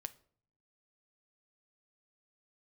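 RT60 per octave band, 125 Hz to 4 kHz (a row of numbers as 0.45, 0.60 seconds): 0.95, 0.85, 0.60, 0.50, 0.40, 0.35 seconds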